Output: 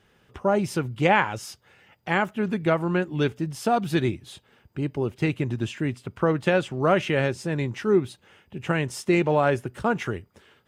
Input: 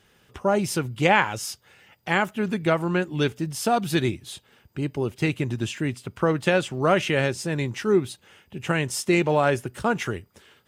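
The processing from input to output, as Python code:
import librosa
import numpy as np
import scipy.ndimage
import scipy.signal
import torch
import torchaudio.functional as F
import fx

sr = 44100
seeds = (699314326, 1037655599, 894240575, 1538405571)

y = fx.high_shelf(x, sr, hz=3600.0, db=-9.0)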